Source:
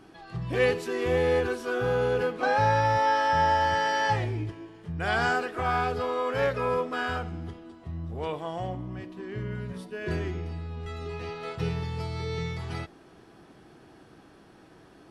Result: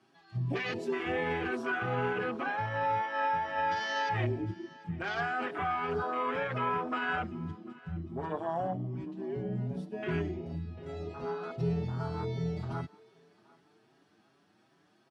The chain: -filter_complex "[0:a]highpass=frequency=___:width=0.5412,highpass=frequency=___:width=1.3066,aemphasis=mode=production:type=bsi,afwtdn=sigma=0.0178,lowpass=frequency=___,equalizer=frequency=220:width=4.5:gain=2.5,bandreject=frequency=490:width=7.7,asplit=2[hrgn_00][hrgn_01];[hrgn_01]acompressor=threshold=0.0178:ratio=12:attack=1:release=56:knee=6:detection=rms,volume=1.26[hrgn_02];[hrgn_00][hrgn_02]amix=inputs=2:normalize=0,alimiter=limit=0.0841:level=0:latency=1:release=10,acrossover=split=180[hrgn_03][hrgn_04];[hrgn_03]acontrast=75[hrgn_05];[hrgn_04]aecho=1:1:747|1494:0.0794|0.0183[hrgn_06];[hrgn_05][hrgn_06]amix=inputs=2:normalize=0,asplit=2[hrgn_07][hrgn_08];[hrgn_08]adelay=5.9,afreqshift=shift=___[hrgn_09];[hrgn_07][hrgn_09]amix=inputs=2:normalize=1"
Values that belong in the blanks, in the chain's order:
93, 93, 5.3k, 2.6